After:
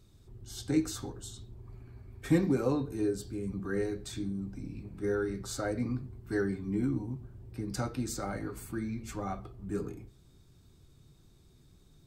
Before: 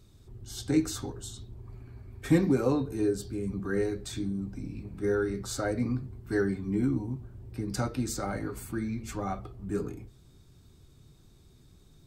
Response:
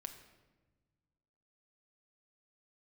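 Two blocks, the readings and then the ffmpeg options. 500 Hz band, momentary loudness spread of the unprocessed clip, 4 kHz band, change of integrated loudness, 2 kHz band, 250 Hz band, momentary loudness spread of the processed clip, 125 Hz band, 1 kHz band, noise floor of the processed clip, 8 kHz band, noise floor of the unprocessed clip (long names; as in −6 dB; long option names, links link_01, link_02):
−3.5 dB, 16 LU, −3.0 dB, −3.0 dB, −3.0 dB, −3.0 dB, 16 LU, −3.0 dB, −3.0 dB, −61 dBFS, −3.0 dB, −58 dBFS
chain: -filter_complex "[0:a]asplit=2[link_01][link_02];[1:a]atrim=start_sample=2205,atrim=end_sample=6174[link_03];[link_02][link_03]afir=irnorm=-1:irlink=0,volume=-5dB[link_04];[link_01][link_04]amix=inputs=2:normalize=0,volume=-5.5dB"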